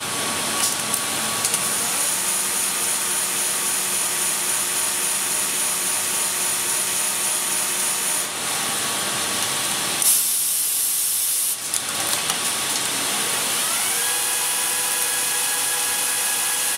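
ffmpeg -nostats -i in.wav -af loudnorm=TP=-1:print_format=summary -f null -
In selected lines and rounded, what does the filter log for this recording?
Input Integrated:    -19.3 LUFS
Input True Peak:      -5.1 dBTP
Input LRA:             1.2 LU
Input Threshold:     -29.3 LUFS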